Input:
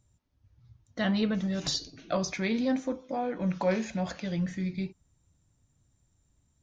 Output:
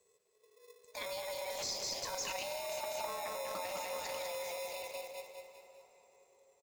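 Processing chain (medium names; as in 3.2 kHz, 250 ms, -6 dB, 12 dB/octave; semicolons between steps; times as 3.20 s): Doppler pass-by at 2.94 s, 9 m/s, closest 3.3 m; hum notches 50/100/150/200 Hz; frequency shift +360 Hz; feedback delay 199 ms, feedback 46%, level -7 dB; in parallel at -4.5 dB: sample-and-hold 29×; on the sum: treble shelf 2.6 kHz +12 dB; peak limiter -38 dBFS, peak gain reduction 31.5 dB; on a send at -10 dB: reverberation RT60 4.3 s, pre-delay 117 ms; on the sum: trim +9.5 dB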